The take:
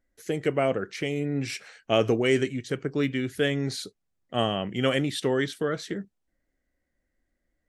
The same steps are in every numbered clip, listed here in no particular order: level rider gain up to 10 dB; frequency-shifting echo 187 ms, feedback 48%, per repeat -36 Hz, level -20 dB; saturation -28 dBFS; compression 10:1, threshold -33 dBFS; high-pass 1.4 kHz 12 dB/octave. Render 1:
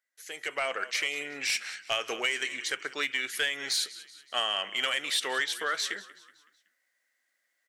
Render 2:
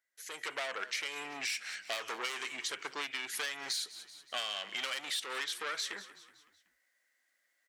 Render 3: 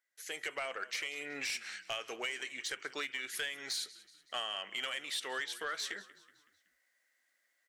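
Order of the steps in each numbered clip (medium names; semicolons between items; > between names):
frequency-shifting echo > high-pass > compression > saturation > level rider; saturation > high-pass > frequency-shifting echo > level rider > compression; level rider > high-pass > compression > frequency-shifting echo > saturation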